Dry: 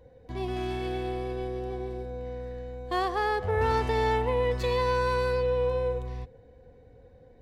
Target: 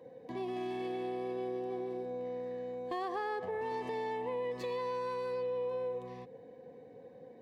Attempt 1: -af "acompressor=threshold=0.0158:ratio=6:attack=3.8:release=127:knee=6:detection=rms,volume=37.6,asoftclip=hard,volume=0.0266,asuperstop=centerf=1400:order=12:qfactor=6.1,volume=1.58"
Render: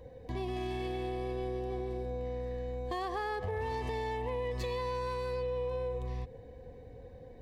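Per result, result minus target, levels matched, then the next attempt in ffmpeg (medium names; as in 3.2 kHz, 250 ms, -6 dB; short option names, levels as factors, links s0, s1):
125 Hz band +12.5 dB; 4 kHz band +3.5 dB
-af "acompressor=threshold=0.0158:ratio=6:attack=3.8:release=127:knee=6:detection=rms,highpass=f=170:w=0.5412,highpass=f=170:w=1.3066,volume=37.6,asoftclip=hard,volume=0.0266,asuperstop=centerf=1400:order=12:qfactor=6.1,volume=1.58"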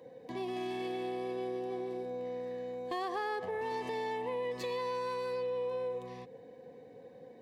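4 kHz band +4.5 dB
-af "acompressor=threshold=0.0158:ratio=6:attack=3.8:release=127:knee=6:detection=rms,highpass=f=170:w=0.5412,highpass=f=170:w=1.3066,volume=37.6,asoftclip=hard,volume=0.0266,asuperstop=centerf=1400:order=12:qfactor=6.1,highshelf=f=2400:g=-7,volume=1.58"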